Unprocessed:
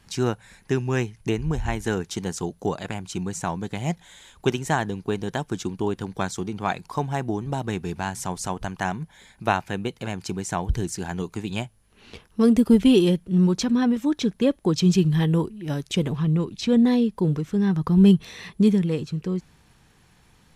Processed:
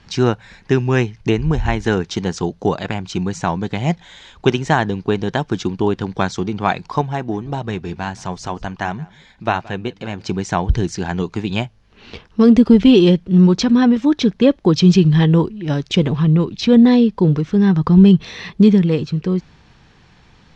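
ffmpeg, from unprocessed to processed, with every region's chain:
-filter_complex "[0:a]asettb=1/sr,asplit=3[a][b][c];[a]atrim=end=7.014[d];[b]atrim=start=7.01:end=10.27,asetpts=PTS-STARTPTS,afade=t=in:d=0.004:c=qsin,afade=t=out:st=3.256:d=0.004:c=qsin,flanger=delay=1.6:depth=2.5:regen=-66:speed=1.5:shape=sinusoidal,aecho=1:1:173:0.0708,atrim=end_sample=143766[e];[c]atrim=start=10.266[f];[d][e]acrossfade=d=0.004:c1=hsin:c2=qsin[g];[g][f]acrossfade=d=0.004:c1=qsin:c2=hsin,lowpass=f=5.6k:w=0.5412,lowpass=f=5.6k:w=1.3066,alimiter=level_in=9dB:limit=-1dB:release=50:level=0:latency=1,volume=-1dB"

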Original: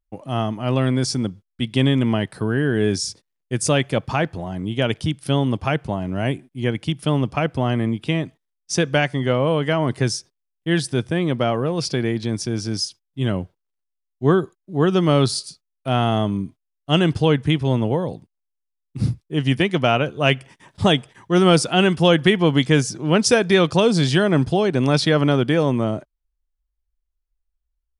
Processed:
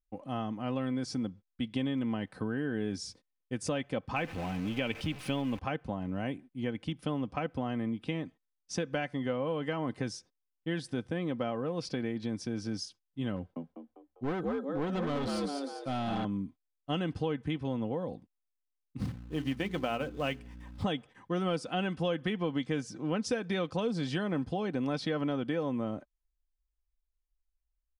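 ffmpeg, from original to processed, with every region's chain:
-filter_complex "[0:a]asettb=1/sr,asplit=3[a][b][c];[a]atrim=end=4.164[d];[b]atrim=start=4.16:end=5.59,asetpts=PTS-STARTPTS,afade=t=in:d=0.004:c=qsin,afade=t=out:st=1.426:d=0.004:c=qsin,aeval=exprs='val(0)+0.5*0.0355*sgn(val(0))':c=same,equalizer=f=2.5k:w=2.8:g=11,acrusher=bits=7:dc=4:mix=0:aa=0.000001[e];[c]atrim=start=5.586[f];[d][e]acrossfade=d=0.004:c1=hsin:c2=qsin[g];[g][f]acrossfade=d=0.004:c1=qsin:c2=hsin,asettb=1/sr,asplit=3[h][i][j];[h]atrim=end=13.364[k];[i]atrim=start=13.36:end=16.25,asetpts=PTS-STARTPTS,afade=t=in:d=0.004:c=qsin,afade=t=out:st=2.886:d=0.004:c=qsin,asplit=6[l][m][n][o][p][q];[m]adelay=199,afreqshift=69,volume=-5.5dB[r];[n]adelay=398,afreqshift=138,volume=-13dB[s];[o]adelay=597,afreqshift=207,volume=-20.6dB[t];[p]adelay=796,afreqshift=276,volume=-28.1dB[u];[q]adelay=995,afreqshift=345,volume=-35.6dB[v];[l][r][s][t][u][v]amix=inputs=6:normalize=0,atrim=end_sample=127449,asoftclip=type=hard:threshold=-17dB[w];[j]atrim=start=16.246[x];[k][w]acrossfade=d=0.004:c1=hsin:c2=qsin[y];[y][x]acrossfade=d=0.004:c1=qsin:c2=hsin,asettb=1/sr,asplit=3[z][aa][ab];[z]atrim=end=18.994[ac];[aa]atrim=start=18.99:end=20.83,asetpts=PTS-STARTPTS,afade=t=in:d=0.004:c=qsin,afade=t=out:st=1.836:d=0.004:c=qsin,bandreject=f=60:t=h:w=6,bandreject=f=120:t=h:w=6,bandreject=f=180:t=h:w=6,bandreject=f=240:t=h:w=6,bandreject=f=300:t=h:w=6,bandreject=f=360:t=h:w=6,bandreject=f=420:t=h:w=6,aeval=exprs='val(0)+0.0126*(sin(2*PI*60*n/s)+sin(2*PI*2*60*n/s)/2+sin(2*PI*3*60*n/s)/3+sin(2*PI*4*60*n/s)/4+sin(2*PI*5*60*n/s)/5)':c=same,acrusher=bits=4:mode=log:mix=0:aa=0.000001[ad];[ab]atrim=start=20.826[ae];[ac][ad]acrossfade=d=0.004:c1=hsin:c2=qsin[af];[af][ae]acrossfade=d=0.004:c1=qsin:c2=hsin,lowpass=f=2.7k:p=1,aecho=1:1:3.9:0.46,acompressor=threshold=-22dB:ratio=3,volume=-8.5dB"

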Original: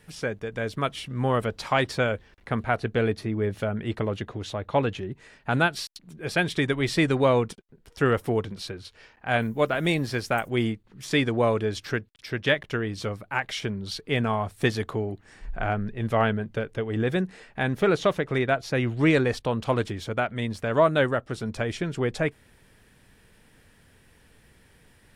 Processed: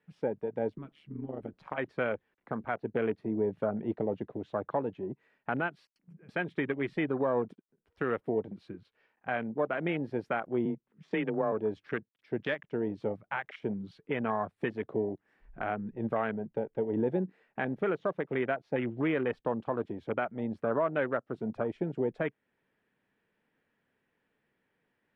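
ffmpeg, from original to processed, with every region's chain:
-filter_complex "[0:a]asettb=1/sr,asplit=3[a][b][c];[a]atrim=end=0.704[d];[b]atrim=start=0.7:end=1.78,asetpts=PTS-STARTPTS,afade=t=in:d=0.004:c=qsin,afade=t=out:st=1.076:d=0.004:c=qsin,bass=f=250:g=4,treble=f=4k:g=-1,acompressor=threshold=-26dB:ratio=8:attack=3.2:release=140:knee=1:detection=peak,tremolo=f=150:d=0.824[e];[c]atrim=start=1.776[f];[d][e]acrossfade=d=0.004:c1=hsin:c2=qsin[g];[g][f]acrossfade=d=0.004:c1=qsin:c2=hsin,asettb=1/sr,asplit=3[h][i][j];[h]atrim=end=5.854[k];[i]atrim=start=5.85:end=6.29,asetpts=PTS-STARTPTS,afade=t=in:d=0.004:c=qsin,afade=t=out:st=0.436:d=0.004:c=qsin,asuperstop=centerf=3700:order=4:qfactor=2.4,acompressor=threshold=-39dB:ratio=12:attack=3.2:release=140:knee=1:detection=peak[l];[j]atrim=start=6.286[m];[k][l]acrossfade=d=0.004:c1=hsin:c2=qsin[n];[n][m]acrossfade=d=0.004:c1=qsin:c2=hsin,asettb=1/sr,asplit=3[o][p][q];[o]atrim=end=10.654[r];[p]atrim=start=10.65:end=11.52,asetpts=PTS-STARTPTS,afade=t=in:d=0.004:c=qsin,afade=t=out:st=0.866:d=0.004:c=qsin,lowpass=6.2k,afreqshift=23[s];[q]atrim=start=11.516[t];[r][s]acrossfade=d=0.004:c1=hsin:c2=qsin[u];[u][t]acrossfade=d=0.004:c1=qsin:c2=hsin,afwtdn=0.0316,alimiter=limit=-19.5dB:level=0:latency=1:release=348,acrossover=split=160 3000:gain=0.0891 1 0.1[v][w][x];[v][w][x]amix=inputs=3:normalize=0"

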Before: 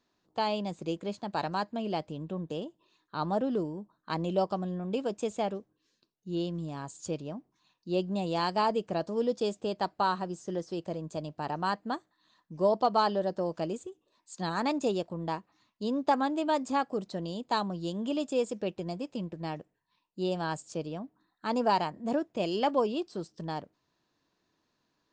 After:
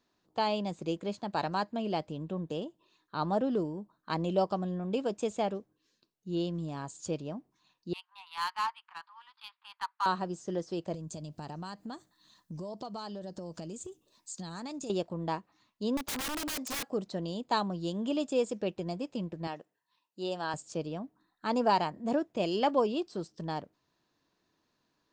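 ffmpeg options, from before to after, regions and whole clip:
-filter_complex "[0:a]asettb=1/sr,asplit=3[a][b][c];[a]atrim=end=7.934[d];[b]atrim=start=7.93:end=10.06,asetpts=PTS-STARTPTS,afade=t=in:d=0.004:c=qsin,afade=t=out:st=2.126:d=0.004:c=qsin,asuperpass=centerf=2100:order=20:qfactor=0.55,adynamicsmooth=sensitivity=6:basefreq=2.1k[e];[c]atrim=start=10.056[f];[d][e]acrossfade=d=0.004:c1=hsin:c2=qsin[g];[g][f]acrossfade=d=0.004:c1=qsin:c2=hsin,asettb=1/sr,asplit=3[h][i][j];[h]atrim=end=10.944[k];[i]atrim=start=10.94:end=14.9,asetpts=PTS-STARTPTS,afade=t=in:d=0.004:c=qsin,afade=t=out:st=3.956:d=0.004:c=qsin,bass=f=250:g=9,treble=f=4k:g=13,acompressor=threshold=-38dB:ratio=6:attack=3.2:release=140:knee=1:detection=peak[l];[j]atrim=start=14.896[m];[k][l]acrossfade=d=0.004:c1=hsin:c2=qsin[n];[n][m]acrossfade=d=0.004:c1=qsin:c2=hsin,asettb=1/sr,asplit=3[o][p][q];[o]atrim=end=15.974[r];[p]atrim=start=15.97:end=16.9,asetpts=PTS-STARTPTS,afade=t=in:d=0.004:c=qsin,afade=t=out:st=0.926:d=0.004:c=qsin,bass=f=250:g=-8,treble=f=4k:g=7,aeval=exprs='(mod(33.5*val(0)+1,2)-1)/33.5':c=same[s];[q]atrim=start=16.896[t];[r][s]acrossfade=d=0.004:c1=hsin:c2=qsin[u];[u][t]acrossfade=d=0.004:c1=qsin:c2=hsin,asettb=1/sr,asplit=3[v][w][x];[v]atrim=end=19.474[y];[w]atrim=start=19.47:end=20.54,asetpts=PTS-STARTPTS,afade=t=in:d=0.004:c=qsin,afade=t=out:st=1.066:d=0.004:c=qsin,highpass=f=490:p=1,bandreject=f=2.3k:w=12[z];[x]atrim=start=20.536[aa];[y][z]acrossfade=d=0.004:c1=hsin:c2=qsin[ab];[ab][aa]acrossfade=d=0.004:c1=qsin:c2=hsin"

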